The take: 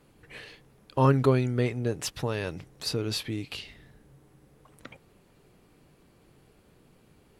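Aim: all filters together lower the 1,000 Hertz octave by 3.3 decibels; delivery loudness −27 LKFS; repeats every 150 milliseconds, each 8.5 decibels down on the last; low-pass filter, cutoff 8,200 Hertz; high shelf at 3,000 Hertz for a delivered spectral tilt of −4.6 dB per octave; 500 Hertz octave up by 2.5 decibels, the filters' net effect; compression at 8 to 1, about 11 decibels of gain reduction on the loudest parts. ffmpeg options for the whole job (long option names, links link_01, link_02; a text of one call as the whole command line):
ffmpeg -i in.wav -af "lowpass=8200,equalizer=frequency=500:width_type=o:gain=4,equalizer=frequency=1000:width_type=o:gain=-5.5,highshelf=frequency=3000:gain=5.5,acompressor=threshold=-26dB:ratio=8,aecho=1:1:150|300|450|600:0.376|0.143|0.0543|0.0206,volume=5dB" out.wav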